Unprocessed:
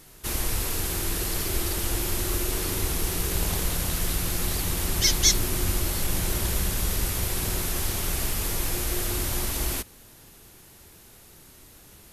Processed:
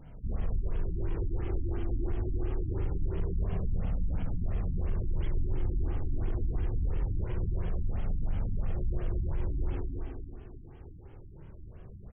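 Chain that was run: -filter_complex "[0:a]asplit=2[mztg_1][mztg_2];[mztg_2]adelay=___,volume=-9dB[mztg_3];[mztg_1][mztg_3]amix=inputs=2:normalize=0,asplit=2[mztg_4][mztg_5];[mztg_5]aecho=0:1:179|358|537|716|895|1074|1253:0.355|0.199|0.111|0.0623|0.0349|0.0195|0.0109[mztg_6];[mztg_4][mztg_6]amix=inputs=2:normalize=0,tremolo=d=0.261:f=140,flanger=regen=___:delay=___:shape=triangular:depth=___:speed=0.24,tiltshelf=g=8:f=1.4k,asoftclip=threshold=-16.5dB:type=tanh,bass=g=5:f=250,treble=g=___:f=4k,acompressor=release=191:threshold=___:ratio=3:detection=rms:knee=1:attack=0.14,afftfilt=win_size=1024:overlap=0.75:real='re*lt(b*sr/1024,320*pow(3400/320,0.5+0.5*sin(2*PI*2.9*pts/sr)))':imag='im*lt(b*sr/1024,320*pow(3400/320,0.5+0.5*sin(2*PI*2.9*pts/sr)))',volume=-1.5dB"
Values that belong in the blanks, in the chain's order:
39, -41, 1.3, 1.5, 9, -25dB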